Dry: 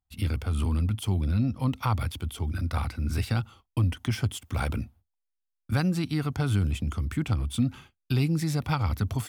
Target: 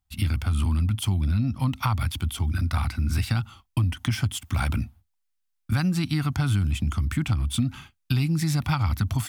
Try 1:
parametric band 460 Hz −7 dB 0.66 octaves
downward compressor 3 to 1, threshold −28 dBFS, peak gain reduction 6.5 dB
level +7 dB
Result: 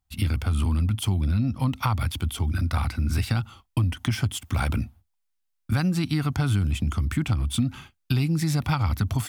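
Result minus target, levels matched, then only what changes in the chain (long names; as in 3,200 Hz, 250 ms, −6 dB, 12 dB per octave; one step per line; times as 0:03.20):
500 Hz band +4.0 dB
change: parametric band 460 Hz −16 dB 0.66 octaves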